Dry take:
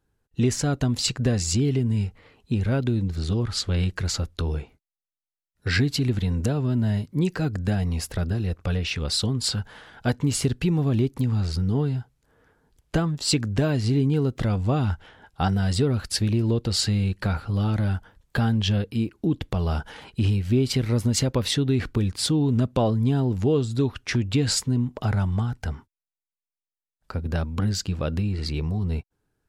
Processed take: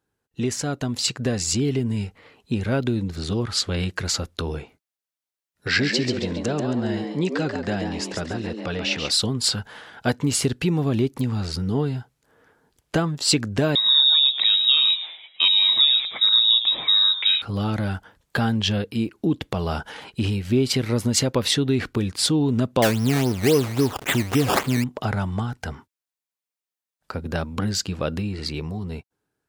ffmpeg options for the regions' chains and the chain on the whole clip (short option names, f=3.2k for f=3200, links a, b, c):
-filter_complex "[0:a]asettb=1/sr,asplit=3[a][b][c];[a]atrim=end=5.674[d];[b]atrim=start=5.67:end=9.11,asetpts=PTS-STARTPTS,afade=t=in:d=0.004:c=qsin,afade=t=out:st=3.436:d=0.004:c=qsin,lowpass=f=7.3k:w=0.5412,lowpass=f=7.3k:w=1.3066,lowshelf=f=110:g=-10.5,asplit=5[e][f][g][h][i];[f]adelay=137,afreqshift=110,volume=-6.5dB[j];[g]adelay=274,afreqshift=220,volume=-16.1dB[k];[h]adelay=411,afreqshift=330,volume=-25.8dB[l];[i]adelay=548,afreqshift=440,volume=-35.4dB[m];[e][j][k][l][m]amix=inputs=5:normalize=0,atrim=end_sample=151704[n];[c]atrim=start=9.106[o];[d][n]acrossfade=d=0.004:c1=hsin:c2=qsin[p];[p][o]acrossfade=d=0.004:c1=qsin:c2=hsin,asettb=1/sr,asplit=3[q][r][s];[q]atrim=end=13.754[t];[r]atrim=start=13.75:end=17.42,asetpts=PTS-STARTPTS,afade=t=in:d=0.004:c=qsin,afade=t=out:st=3.666:d=0.004:c=qsin,asplit=5[u][v][w][x][y];[v]adelay=107,afreqshift=120,volume=-12.5dB[z];[w]adelay=214,afreqshift=240,volume=-21.6dB[aa];[x]adelay=321,afreqshift=360,volume=-30.7dB[ab];[y]adelay=428,afreqshift=480,volume=-39.9dB[ac];[u][z][aa][ab][ac]amix=inputs=5:normalize=0,atrim=end_sample=161847,lowpass=f=3.3k:t=q:w=0.5098,lowpass=f=3.3k:t=q:w=0.6013,lowpass=f=3.3k:t=q:w=0.9,lowpass=f=3.3k:t=q:w=2.563,afreqshift=-3900[ad];[s]atrim=start=17.416[ae];[t][ad]acrossfade=d=0.004:c1=hsin:c2=qsin[af];[af][ae]acrossfade=d=0.004:c1=qsin:c2=hsin,asettb=1/sr,asplit=3[ag][ah][ai];[ag]atrim=end=22.824[aj];[ah]atrim=start=22.82:end=24.84,asetpts=PTS-STARTPTS,afade=t=in:d=0.004:c=qsin,afade=t=out:st=2.016:d=0.004:c=qsin,aeval=exprs='val(0)+0.5*0.0237*sgn(val(0))':c=same,acrusher=samples=15:mix=1:aa=0.000001:lfo=1:lforange=15:lforate=3.7[ak];[ai]atrim=start=24.836[al];[aj][ak]acrossfade=d=0.004:c1=hsin:c2=qsin[am];[am][al]acrossfade=d=0.004:c1=qsin:c2=hsin,highpass=f=230:p=1,dynaudnorm=f=370:g=7:m=4.5dB"